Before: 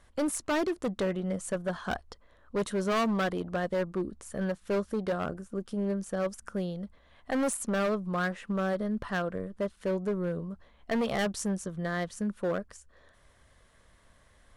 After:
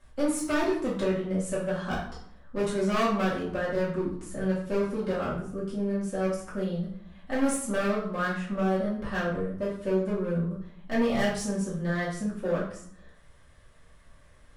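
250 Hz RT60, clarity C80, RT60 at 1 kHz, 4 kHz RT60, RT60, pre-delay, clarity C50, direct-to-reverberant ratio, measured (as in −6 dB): 0.90 s, 8.0 dB, 0.65 s, 0.45 s, 0.60 s, 3 ms, 4.0 dB, −9.0 dB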